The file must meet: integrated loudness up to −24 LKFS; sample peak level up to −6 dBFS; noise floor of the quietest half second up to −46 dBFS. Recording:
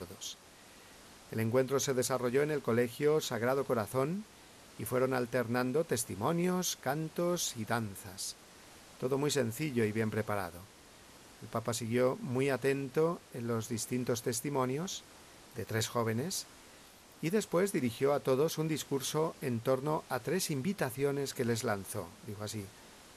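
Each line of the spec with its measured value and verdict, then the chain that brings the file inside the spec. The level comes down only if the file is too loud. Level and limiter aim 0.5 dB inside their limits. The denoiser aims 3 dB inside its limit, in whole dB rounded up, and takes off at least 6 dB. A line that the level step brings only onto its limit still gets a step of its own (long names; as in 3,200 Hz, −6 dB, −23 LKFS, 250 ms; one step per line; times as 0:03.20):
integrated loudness −34.0 LKFS: in spec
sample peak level −17.0 dBFS: in spec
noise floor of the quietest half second −57 dBFS: in spec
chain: no processing needed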